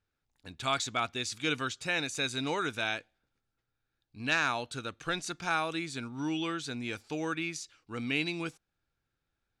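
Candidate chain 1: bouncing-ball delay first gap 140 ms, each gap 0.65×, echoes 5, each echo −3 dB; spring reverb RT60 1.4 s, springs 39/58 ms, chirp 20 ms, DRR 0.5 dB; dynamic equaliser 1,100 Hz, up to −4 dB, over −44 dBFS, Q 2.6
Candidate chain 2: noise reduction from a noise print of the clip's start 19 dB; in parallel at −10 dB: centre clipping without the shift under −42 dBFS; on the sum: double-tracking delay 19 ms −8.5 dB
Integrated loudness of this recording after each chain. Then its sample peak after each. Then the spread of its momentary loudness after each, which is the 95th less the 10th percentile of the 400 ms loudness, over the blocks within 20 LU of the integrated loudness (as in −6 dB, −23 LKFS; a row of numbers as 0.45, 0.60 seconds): −28.5, −30.0 LKFS; −12.5, −11.5 dBFS; 9, 8 LU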